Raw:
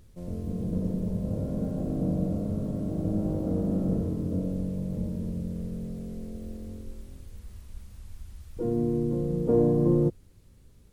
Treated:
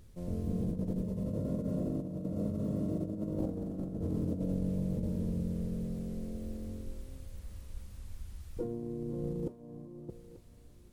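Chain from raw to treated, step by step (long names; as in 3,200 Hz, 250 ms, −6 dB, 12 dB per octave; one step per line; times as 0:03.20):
compressor whose output falls as the input rises −30 dBFS, ratio −0.5
0:01.01–0:03.39: notch comb filter 790 Hz
feedback echo with a high-pass in the loop 886 ms, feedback 34%, high-pass 420 Hz, level −13 dB
level −4 dB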